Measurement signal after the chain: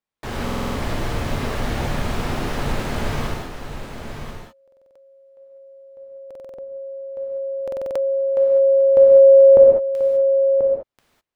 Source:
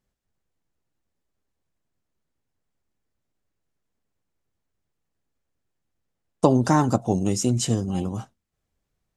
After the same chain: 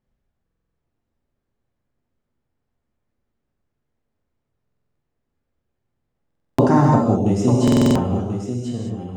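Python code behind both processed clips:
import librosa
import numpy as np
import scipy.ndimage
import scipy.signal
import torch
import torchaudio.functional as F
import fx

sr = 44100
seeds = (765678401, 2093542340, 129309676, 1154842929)

y = fx.lowpass(x, sr, hz=1400.0, slope=6)
y = y + 10.0 ** (-8.5 / 20.0) * np.pad(y, (int(1036 * sr / 1000.0), 0))[:len(y)]
y = fx.rev_gated(y, sr, seeds[0], gate_ms=230, shape='flat', drr_db=-2.0)
y = fx.buffer_glitch(y, sr, at_s=(0.44, 4.63, 6.26, 7.63), block=2048, repeats=6)
y = y * 10.0 ** (2.0 / 20.0)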